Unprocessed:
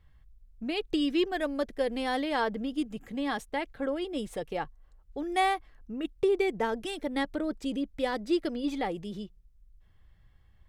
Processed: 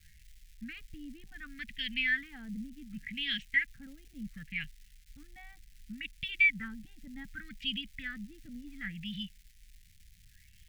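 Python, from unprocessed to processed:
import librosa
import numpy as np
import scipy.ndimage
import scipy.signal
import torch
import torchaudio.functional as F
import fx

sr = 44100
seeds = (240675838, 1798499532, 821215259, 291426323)

y = fx.filter_lfo_lowpass(x, sr, shape='sine', hz=0.68, low_hz=610.0, high_hz=3100.0, q=5.8)
y = fx.wow_flutter(y, sr, seeds[0], rate_hz=2.1, depth_cents=21.0)
y = fx.dmg_crackle(y, sr, seeds[1], per_s=510.0, level_db=-49.0)
y = scipy.signal.sosfilt(scipy.signal.ellip(3, 1.0, 40, [200.0, 1900.0], 'bandstop', fs=sr, output='sos'), y)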